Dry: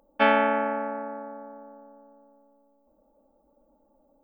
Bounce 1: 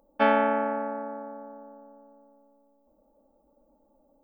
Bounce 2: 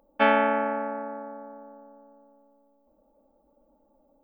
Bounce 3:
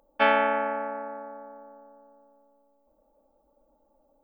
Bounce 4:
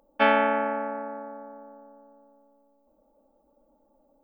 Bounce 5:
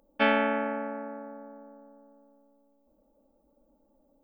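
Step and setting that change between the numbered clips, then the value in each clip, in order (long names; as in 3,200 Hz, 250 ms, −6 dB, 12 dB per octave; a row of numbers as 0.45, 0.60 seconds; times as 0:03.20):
parametric band, centre frequency: 2,600, 7,800, 220, 85, 900 Hertz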